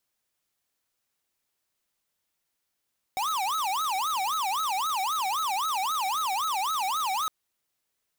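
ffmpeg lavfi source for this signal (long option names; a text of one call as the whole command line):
ffmpeg -f lavfi -i "aevalsrc='0.0398*(2*lt(mod((1024.5*t-275.5/(2*PI*3.8)*sin(2*PI*3.8*t)),1),0.5)-1)':duration=4.11:sample_rate=44100" out.wav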